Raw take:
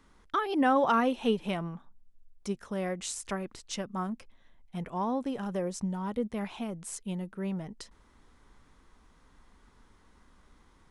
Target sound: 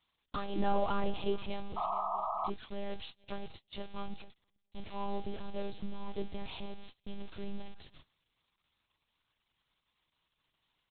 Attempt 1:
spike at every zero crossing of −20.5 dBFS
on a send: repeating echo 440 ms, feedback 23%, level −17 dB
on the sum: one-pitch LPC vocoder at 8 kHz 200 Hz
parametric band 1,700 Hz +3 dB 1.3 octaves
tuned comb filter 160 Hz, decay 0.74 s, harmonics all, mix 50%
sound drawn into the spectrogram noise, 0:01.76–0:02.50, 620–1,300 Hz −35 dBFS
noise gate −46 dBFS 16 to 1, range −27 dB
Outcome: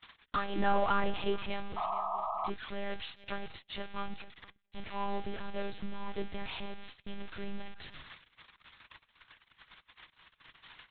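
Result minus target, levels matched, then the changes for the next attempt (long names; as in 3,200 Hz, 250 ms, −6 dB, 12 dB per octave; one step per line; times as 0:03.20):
2,000 Hz band +7.5 dB
change: parametric band 1,700 Hz −8 dB 1.3 octaves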